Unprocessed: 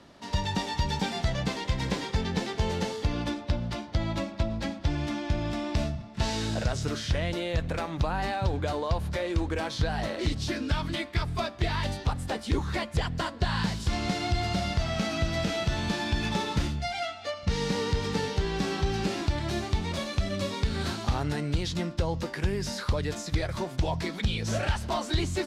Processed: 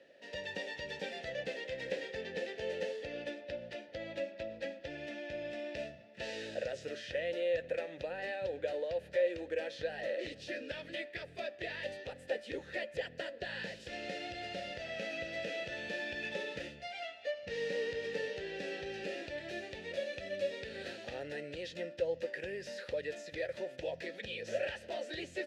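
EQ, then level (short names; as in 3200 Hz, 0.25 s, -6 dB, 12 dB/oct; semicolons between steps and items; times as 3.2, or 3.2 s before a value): vowel filter e; high shelf 5600 Hz +11.5 dB; +3.5 dB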